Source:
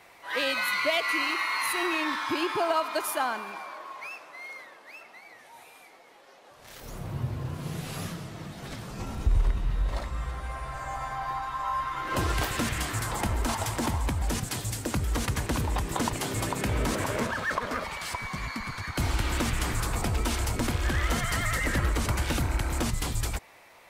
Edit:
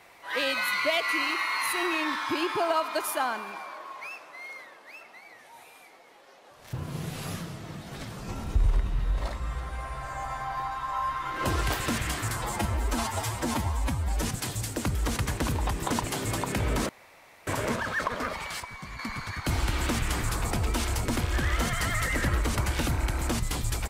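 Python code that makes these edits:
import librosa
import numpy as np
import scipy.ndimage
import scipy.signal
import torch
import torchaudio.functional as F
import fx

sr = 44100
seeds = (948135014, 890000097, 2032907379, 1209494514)

y = fx.edit(x, sr, fx.cut(start_s=6.73, length_s=0.71),
    fx.stretch_span(start_s=13.08, length_s=1.24, factor=1.5),
    fx.insert_room_tone(at_s=16.98, length_s=0.58),
    fx.clip_gain(start_s=18.11, length_s=0.39, db=-6.5), tone=tone)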